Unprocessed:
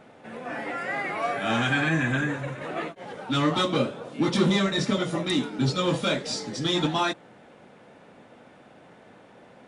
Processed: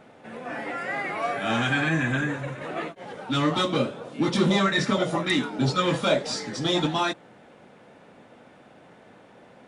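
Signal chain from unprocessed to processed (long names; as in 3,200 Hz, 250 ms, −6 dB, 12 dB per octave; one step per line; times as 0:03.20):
0:04.50–0:06.80: auto-filter bell 1.8 Hz 610–2,000 Hz +9 dB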